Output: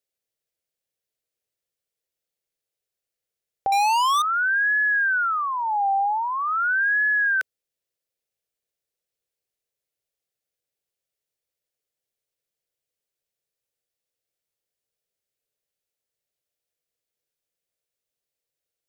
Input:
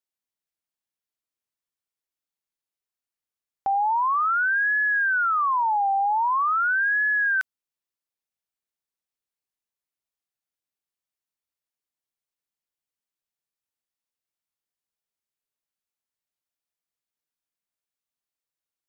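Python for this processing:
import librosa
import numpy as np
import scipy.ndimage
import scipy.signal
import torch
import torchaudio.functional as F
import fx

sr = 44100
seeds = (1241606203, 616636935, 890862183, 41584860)

y = fx.graphic_eq_10(x, sr, hz=(125, 250, 500, 1000), db=(4, -7, 11, -10))
y = fx.leveller(y, sr, passes=5, at=(3.72, 4.22))
y = y * 10.0 ** (4.0 / 20.0)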